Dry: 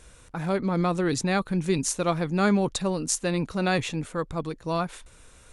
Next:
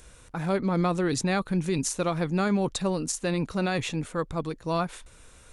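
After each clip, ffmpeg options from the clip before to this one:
ffmpeg -i in.wav -filter_complex "[0:a]acrossover=split=4900[link_01][link_02];[link_02]acompressor=mode=upward:threshold=-59dB:ratio=2.5[link_03];[link_01][link_03]amix=inputs=2:normalize=0,alimiter=limit=-17dB:level=0:latency=1:release=66" out.wav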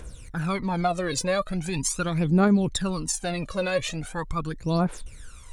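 ffmpeg -i in.wav -af "aphaser=in_gain=1:out_gain=1:delay=2:decay=0.77:speed=0.41:type=triangular,acompressor=threshold=-24dB:ratio=1.5" out.wav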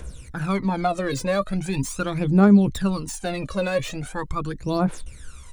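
ffmpeg -i in.wav -filter_complex "[0:a]acrossover=split=410|1600[link_01][link_02][link_03];[link_01]asplit=2[link_04][link_05];[link_05]adelay=15,volume=-2.5dB[link_06];[link_04][link_06]amix=inputs=2:normalize=0[link_07];[link_03]asoftclip=type=tanh:threshold=-32.5dB[link_08];[link_07][link_02][link_08]amix=inputs=3:normalize=0,volume=2dB" out.wav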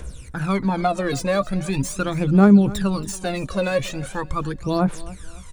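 ffmpeg -i in.wav -af "aecho=1:1:277|554|831:0.112|0.0438|0.0171,volume=2dB" out.wav

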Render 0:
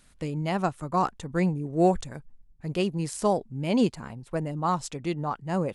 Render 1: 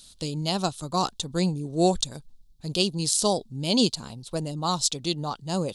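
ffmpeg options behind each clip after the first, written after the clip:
ffmpeg -i in.wav -af "highshelf=frequency=2800:width_type=q:width=3:gain=11.5" out.wav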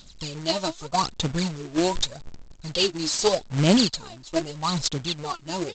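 ffmpeg -i in.wav -af "aphaser=in_gain=1:out_gain=1:delay=3.3:decay=0.79:speed=0.82:type=sinusoidal,aresample=16000,acrusher=bits=2:mode=log:mix=0:aa=0.000001,aresample=44100,volume=-3dB" out.wav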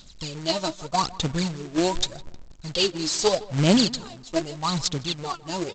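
ffmpeg -i in.wav -filter_complex "[0:a]asplit=2[link_01][link_02];[link_02]adelay=158,lowpass=frequency=2300:poles=1,volume=-19dB,asplit=2[link_03][link_04];[link_04]adelay=158,lowpass=frequency=2300:poles=1,volume=0.33,asplit=2[link_05][link_06];[link_06]adelay=158,lowpass=frequency=2300:poles=1,volume=0.33[link_07];[link_01][link_03][link_05][link_07]amix=inputs=4:normalize=0" out.wav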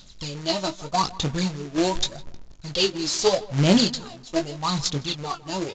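ffmpeg -i in.wav -filter_complex "[0:a]aresample=16000,aresample=44100,asplit=2[link_01][link_02];[link_02]adelay=21,volume=-8.5dB[link_03];[link_01][link_03]amix=inputs=2:normalize=0" out.wav

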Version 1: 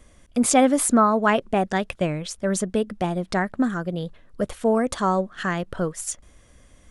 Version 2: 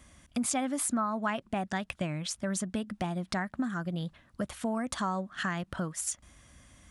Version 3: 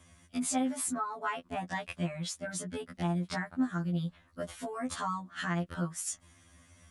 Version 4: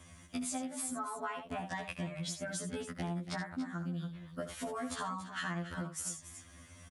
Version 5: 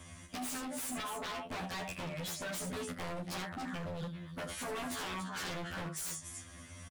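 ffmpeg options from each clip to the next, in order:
ffmpeg -i in.wav -af "highpass=60,equalizer=frequency=450:width=2.2:gain=-12.5,acompressor=threshold=-31dB:ratio=3" out.wav
ffmpeg -i in.wav -af "afftfilt=real='re*2*eq(mod(b,4),0)':imag='im*2*eq(mod(b,4),0)':win_size=2048:overlap=0.75" out.wav
ffmpeg -i in.wav -filter_complex "[0:a]acompressor=threshold=-40dB:ratio=6,asplit=2[link_01][link_02];[link_02]aecho=0:1:75.8|282.8:0.316|0.251[link_03];[link_01][link_03]amix=inputs=2:normalize=0,volume=3.5dB" out.wav
ffmpeg -i in.wav -filter_complex "[0:a]aeval=exprs='0.0112*(abs(mod(val(0)/0.0112+3,4)-2)-1)':channel_layout=same,asplit=2[link_01][link_02];[link_02]adelay=32,volume=-12dB[link_03];[link_01][link_03]amix=inputs=2:normalize=0,volume=4dB" out.wav

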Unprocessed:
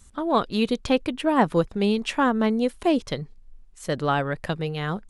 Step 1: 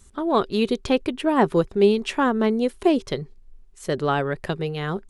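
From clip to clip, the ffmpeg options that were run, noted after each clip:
ffmpeg -i in.wav -af "equalizer=frequency=390:width_type=o:width=0.21:gain=12.5" out.wav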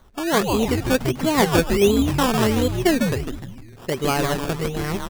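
ffmpeg -i in.wav -filter_complex "[0:a]asplit=7[link_01][link_02][link_03][link_04][link_05][link_06][link_07];[link_02]adelay=151,afreqshift=-130,volume=-3.5dB[link_08];[link_03]adelay=302,afreqshift=-260,volume=-10.4dB[link_09];[link_04]adelay=453,afreqshift=-390,volume=-17.4dB[link_10];[link_05]adelay=604,afreqshift=-520,volume=-24.3dB[link_11];[link_06]adelay=755,afreqshift=-650,volume=-31.2dB[link_12];[link_07]adelay=906,afreqshift=-780,volume=-38.2dB[link_13];[link_01][link_08][link_09][link_10][link_11][link_12][link_13]amix=inputs=7:normalize=0,acrusher=samples=17:mix=1:aa=0.000001:lfo=1:lforange=10.2:lforate=1.4" out.wav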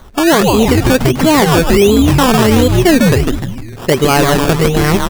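ffmpeg -i in.wav -af "alimiter=level_in=15.5dB:limit=-1dB:release=50:level=0:latency=1,volume=-1dB" out.wav

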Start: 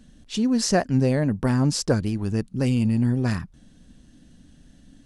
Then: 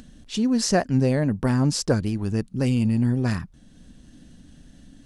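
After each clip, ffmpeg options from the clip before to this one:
ffmpeg -i in.wav -af "acompressor=mode=upward:threshold=-41dB:ratio=2.5" out.wav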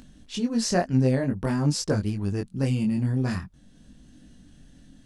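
ffmpeg -i in.wav -af "flanger=delay=19.5:depth=3.7:speed=0.5" out.wav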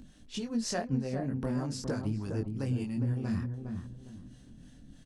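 ffmpeg -i in.wav -filter_complex "[0:a]acompressor=threshold=-26dB:ratio=6,acrossover=split=470[link_01][link_02];[link_01]aeval=exprs='val(0)*(1-0.7/2+0.7/2*cos(2*PI*3.3*n/s))':channel_layout=same[link_03];[link_02]aeval=exprs='val(0)*(1-0.7/2-0.7/2*cos(2*PI*3.3*n/s))':channel_layout=same[link_04];[link_03][link_04]amix=inputs=2:normalize=0,asplit=2[link_05][link_06];[link_06]adelay=409,lowpass=frequency=990:poles=1,volume=-5dB,asplit=2[link_07][link_08];[link_08]adelay=409,lowpass=frequency=990:poles=1,volume=0.32,asplit=2[link_09][link_10];[link_10]adelay=409,lowpass=frequency=990:poles=1,volume=0.32,asplit=2[link_11][link_12];[link_12]adelay=409,lowpass=frequency=990:poles=1,volume=0.32[link_13];[link_07][link_09][link_11][link_13]amix=inputs=4:normalize=0[link_14];[link_05][link_14]amix=inputs=2:normalize=0" out.wav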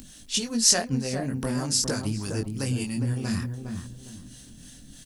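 ffmpeg -i in.wav -af "crystalizer=i=6.5:c=0,volume=3.5dB" out.wav

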